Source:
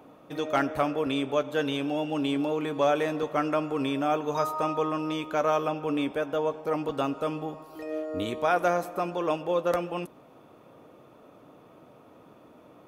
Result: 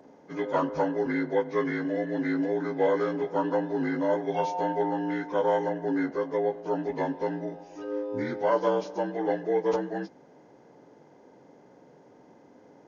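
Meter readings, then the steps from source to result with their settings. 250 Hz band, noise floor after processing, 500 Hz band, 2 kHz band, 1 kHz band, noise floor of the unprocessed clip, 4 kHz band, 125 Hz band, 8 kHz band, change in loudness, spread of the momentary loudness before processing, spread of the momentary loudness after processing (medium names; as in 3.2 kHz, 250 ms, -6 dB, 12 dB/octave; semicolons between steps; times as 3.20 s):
+0.5 dB, -56 dBFS, +1.0 dB, -1.0 dB, -1.5 dB, -54 dBFS, -10.5 dB, -1.0 dB, no reading, 0.0 dB, 8 LU, 7 LU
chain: frequency axis rescaled in octaves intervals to 80%; trim +1 dB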